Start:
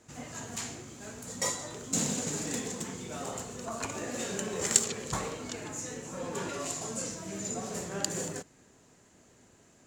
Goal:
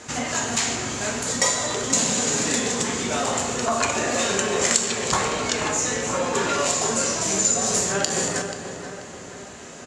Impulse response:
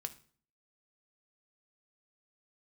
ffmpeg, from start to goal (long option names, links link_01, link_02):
-filter_complex "[0:a]asettb=1/sr,asplit=3[link_01][link_02][link_03];[link_01]atrim=end=7.214[link_04];[link_02]atrim=start=7.21:end=7.92,asetpts=PTS-STARTPTS,afade=type=in:duration=0.004:curve=qsin,afade=type=out:start_time=0.706:duration=0.004:curve=qsin,bass=frequency=250:gain=2,treble=frequency=4000:gain=9[link_05];[link_03]atrim=start=7.916[link_06];[link_04][link_05]acrossfade=duration=0.004:curve1=hsin:curve2=qsin[link_07];[link_07][link_06]acrossfade=duration=0.004:curve1=qsin:curve2=hsin[link_08];[1:a]atrim=start_sample=2205,asetrate=23814,aresample=44100[link_09];[link_08][link_09]afir=irnorm=-1:irlink=0,acompressor=threshold=-42dB:ratio=2.5,lowpass=7200,lowshelf=frequency=420:gain=-10,asplit=2[link_10][link_11];[link_11]adelay=484,lowpass=frequency=2100:poles=1,volume=-8.5dB,asplit=2[link_12][link_13];[link_13]adelay=484,lowpass=frequency=2100:poles=1,volume=0.52,asplit=2[link_14][link_15];[link_15]adelay=484,lowpass=frequency=2100:poles=1,volume=0.52,asplit=2[link_16][link_17];[link_17]adelay=484,lowpass=frequency=2100:poles=1,volume=0.52,asplit=2[link_18][link_19];[link_19]adelay=484,lowpass=frequency=2100:poles=1,volume=0.52,asplit=2[link_20][link_21];[link_21]adelay=484,lowpass=frequency=2100:poles=1,volume=0.52[link_22];[link_10][link_12][link_14][link_16][link_18][link_20][link_22]amix=inputs=7:normalize=0,alimiter=level_in=23dB:limit=-1dB:release=50:level=0:latency=1,volume=-1dB"